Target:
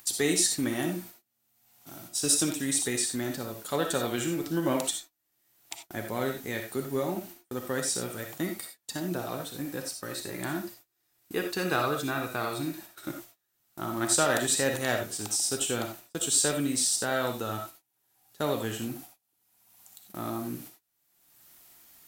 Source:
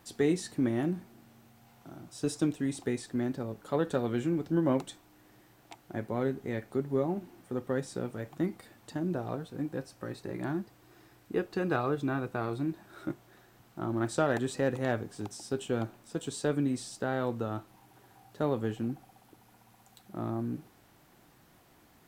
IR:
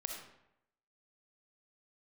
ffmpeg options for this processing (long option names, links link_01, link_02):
-filter_complex "[0:a]agate=range=-34dB:threshold=-48dB:ratio=16:detection=peak,acompressor=mode=upward:threshold=-47dB:ratio=2.5,crystalizer=i=10:c=0[link_01];[1:a]atrim=start_sample=2205,atrim=end_sample=4410[link_02];[link_01][link_02]afir=irnorm=-1:irlink=0" -ar 48000 -c:a libvorbis -b:a 128k